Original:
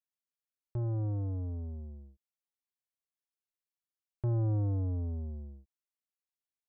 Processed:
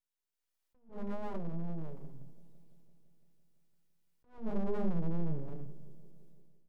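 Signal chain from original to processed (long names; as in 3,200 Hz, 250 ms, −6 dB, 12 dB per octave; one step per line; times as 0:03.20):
high-pass filter 62 Hz 6 dB per octave
mains-hum notches 50/100/150 Hz
tape wow and flutter 120 cents
comb filter 2.1 ms, depth 54%
convolution reverb RT60 0.50 s, pre-delay 6 ms, DRR 5.5 dB
downward compressor 6 to 1, threshold −37 dBFS, peak gain reduction 14 dB
0:00.89–0:04.38: parametric band 150 Hz −13.5 dB 1.3 octaves
full-wave rectification
delay with a low-pass on its return 169 ms, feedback 73%, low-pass 630 Hz, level −19 dB
automatic gain control gain up to 9.5 dB
level that may rise only so fast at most 180 dB per second
level +1 dB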